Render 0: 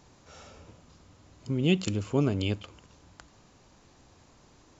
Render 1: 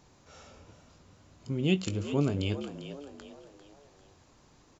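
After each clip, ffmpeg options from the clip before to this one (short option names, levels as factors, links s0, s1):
-filter_complex "[0:a]asplit=2[s0][s1];[s1]adelay=21,volume=0.251[s2];[s0][s2]amix=inputs=2:normalize=0,asplit=5[s3][s4][s5][s6][s7];[s4]adelay=397,afreqshift=71,volume=0.251[s8];[s5]adelay=794,afreqshift=142,volume=0.108[s9];[s6]adelay=1191,afreqshift=213,volume=0.0462[s10];[s7]adelay=1588,afreqshift=284,volume=0.02[s11];[s3][s8][s9][s10][s11]amix=inputs=5:normalize=0,volume=0.708"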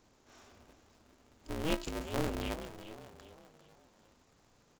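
-af "aeval=exprs='val(0)*sgn(sin(2*PI*160*n/s))':c=same,volume=0.473"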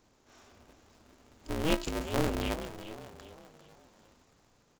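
-af "dynaudnorm=f=220:g=7:m=1.68"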